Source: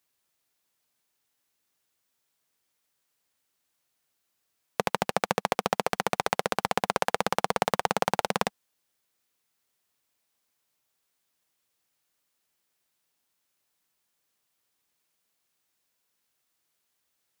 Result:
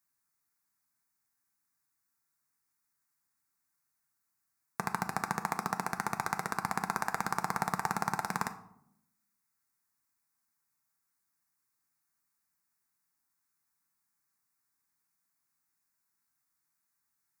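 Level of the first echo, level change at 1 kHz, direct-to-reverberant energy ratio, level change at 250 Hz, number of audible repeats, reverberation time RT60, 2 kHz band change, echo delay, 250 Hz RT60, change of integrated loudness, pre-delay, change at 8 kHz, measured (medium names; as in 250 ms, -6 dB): no echo, -5.0 dB, 7.0 dB, -4.5 dB, no echo, 0.75 s, -4.5 dB, no echo, 1.1 s, -6.0 dB, 4 ms, -4.5 dB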